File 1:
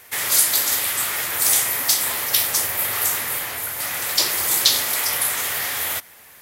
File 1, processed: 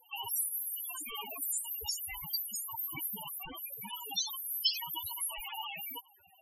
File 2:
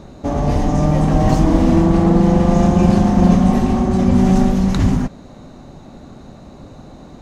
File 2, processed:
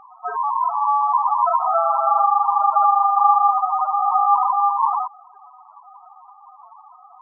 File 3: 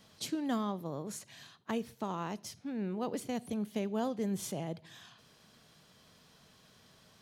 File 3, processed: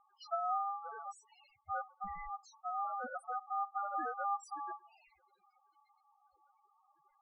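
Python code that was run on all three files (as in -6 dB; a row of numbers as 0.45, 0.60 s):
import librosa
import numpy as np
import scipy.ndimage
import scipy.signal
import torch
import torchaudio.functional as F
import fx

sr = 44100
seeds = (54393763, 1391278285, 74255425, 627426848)

y = x * np.sin(2.0 * np.pi * 1000.0 * np.arange(len(x)) / sr)
y = fx.spec_topn(y, sr, count=4)
y = F.gain(torch.from_numpy(y), 3.0).numpy()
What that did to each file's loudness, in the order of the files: -16.5, -3.0, -2.5 LU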